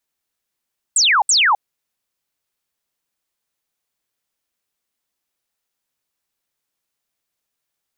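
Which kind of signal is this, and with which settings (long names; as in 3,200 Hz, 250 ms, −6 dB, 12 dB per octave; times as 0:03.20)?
repeated falling chirps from 8,600 Hz, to 760 Hz, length 0.26 s sine, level −11 dB, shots 2, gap 0.07 s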